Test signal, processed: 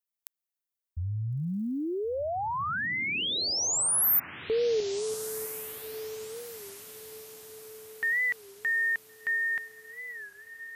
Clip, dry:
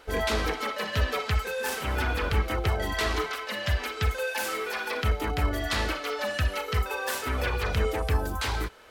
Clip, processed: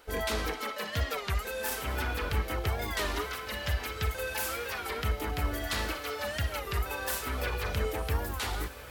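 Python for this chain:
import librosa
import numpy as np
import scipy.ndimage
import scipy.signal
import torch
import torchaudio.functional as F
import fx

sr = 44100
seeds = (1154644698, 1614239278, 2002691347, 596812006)

y = fx.high_shelf(x, sr, hz=10000.0, db=11.5)
y = fx.echo_diffused(y, sr, ms=1443, feedback_pct=47, wet_db=-13)
y = fx.record_warp(y, sr, rpm=33.33, depth_cents=160.0)
y = y * 10.0 ** (-5.0 / 20.0)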